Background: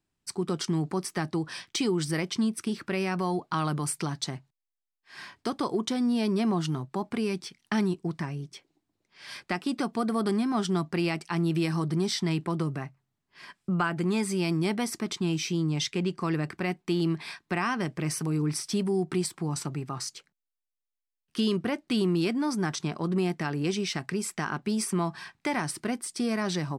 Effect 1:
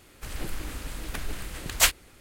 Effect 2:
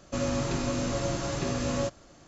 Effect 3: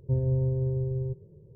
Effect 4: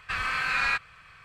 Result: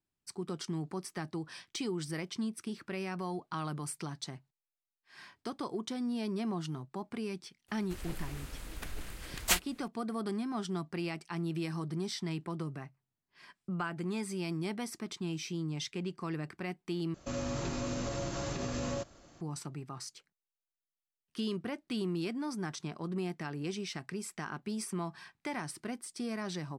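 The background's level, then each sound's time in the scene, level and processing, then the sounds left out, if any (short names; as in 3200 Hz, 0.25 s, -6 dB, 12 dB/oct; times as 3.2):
background -9 dB
7.68 add 1 -8 dB
17.14 replace with 2 -4 dB + limiter -23 dBFS
not used: 3, 4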